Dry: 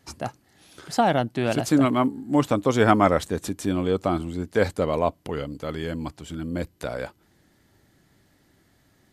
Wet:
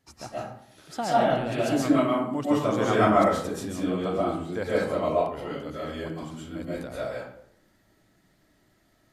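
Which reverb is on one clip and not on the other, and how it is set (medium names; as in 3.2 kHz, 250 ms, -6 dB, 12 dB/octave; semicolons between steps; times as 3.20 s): algorithmic reverb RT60 0.67 s, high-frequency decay 0.6×, pre-delay 90 ms, DRR -8.5 dB; trim -11 dB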